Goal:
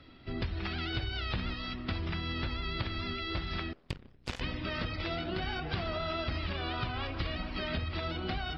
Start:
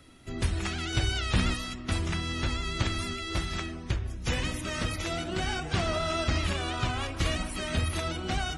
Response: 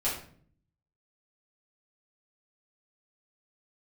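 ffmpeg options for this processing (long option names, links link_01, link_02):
-filter_complex "[0:a]aresample=11025,aresample=44100,asettb=1/sr,asplit=3[link_01][link_02][link_03];[link_01]atrim=end=3.734[link_04];[link_02]atrim=start=3.73:end=4.41,asetpts=PTS-STARTPTS,afade=type=in:duration=0.004:curve=qsin,afade=type=out:start_time=0.676:duration=0.004:curve=qsin,aeval=exprs='0.141*(cos(1*acos(clip(val(0)/0.141,-1,1)))-cos(1*PI/2))+0.0251*(cos(2*acos(clip(val(0)/0.141,-1,1)))-cos(2*PI/2))+0.0501*(cos(3*acos(clip(val(0)/0.141,-1,1)))-cos(3*PI/2))+0.002*(cos(4*acos(clip(val(0)/0.141,-1,1)))-cos(4*PI/2))+0.00355*(cos(8*acos(clip(val(0)/0.141,-1,1)))-cos(8*PI/2))':channel_layout=same[link_05];[link_03]atrim=start=4.406[link_06];[link_04][link_05]acrossfade=duration=0.004:curve1=hsin:curve2=qsin[link_07];[link_07][link_06]acrossfade=duration=0.004:curve1=qsin:curve2=hsin,acompressor=threshold=-31dB:ratio=6"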